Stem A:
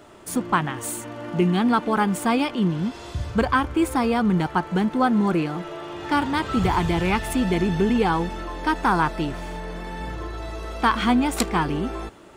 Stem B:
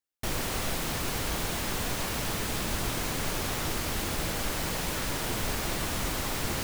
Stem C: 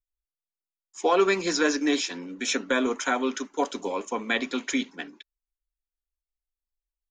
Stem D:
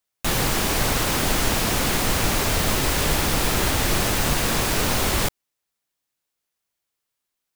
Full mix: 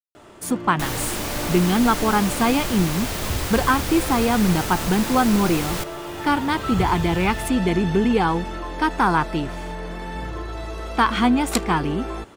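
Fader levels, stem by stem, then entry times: +1.5 dB, -10.5 dB, mute, -6.0 dB; 0.15 s, 0.85 s, mute, 0.55 s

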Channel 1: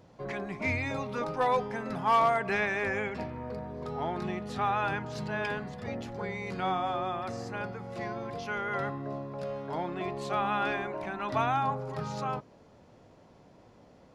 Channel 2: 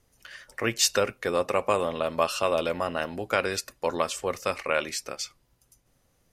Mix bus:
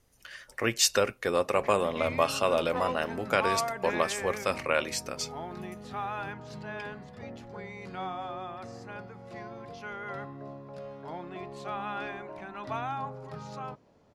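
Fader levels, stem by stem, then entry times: -6.0 dB, -1.0 dB; 1.35 s, 0.00 s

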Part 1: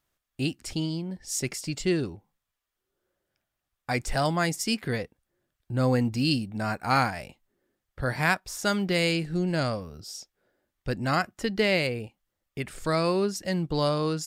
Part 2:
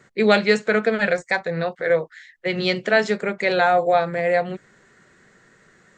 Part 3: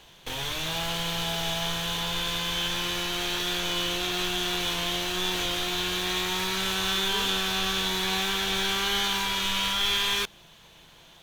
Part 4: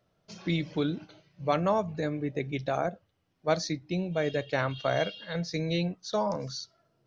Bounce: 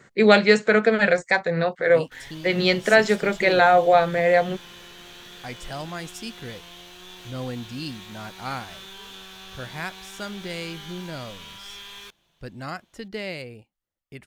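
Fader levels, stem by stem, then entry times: -8.5 dB, +1.5 dB, -15.5 dB, mute; 1.55 s, 0.00 s, 1.85 s, mute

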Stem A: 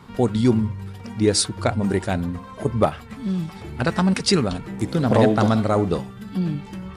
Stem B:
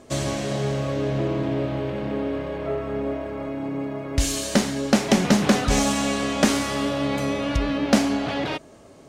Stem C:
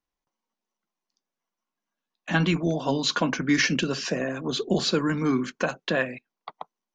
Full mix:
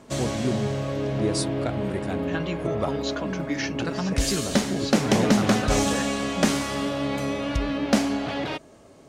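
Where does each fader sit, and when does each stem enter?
-9.5 dB, -2.5 dB, -8.0 dB; 0.00 s, 0.00 s, 0.00 s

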